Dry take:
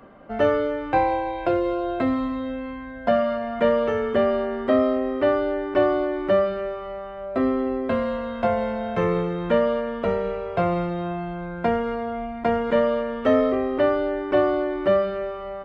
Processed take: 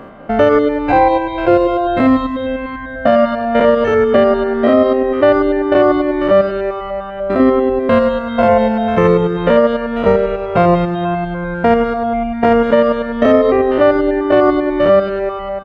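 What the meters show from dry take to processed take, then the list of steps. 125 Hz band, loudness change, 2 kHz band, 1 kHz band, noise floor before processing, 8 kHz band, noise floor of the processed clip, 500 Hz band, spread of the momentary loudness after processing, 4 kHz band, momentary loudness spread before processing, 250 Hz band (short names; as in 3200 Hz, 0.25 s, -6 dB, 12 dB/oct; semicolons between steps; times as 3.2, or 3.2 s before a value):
+10.0 dB, +10.0 dB, +10.0 dB, +10.0 dB, -34 dBFS, n/a, -25 dBFS, +9.5 dB, 8 LU, +9.5 dB, 9 LU, +10.5 dB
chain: stepped spectrum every 0.1 s; reverb removal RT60 0.79 s; on a send: feedback echo 82 ms, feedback 48%, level -14.5 dB; on the sum: maximiser +16 dB; gain -1 dB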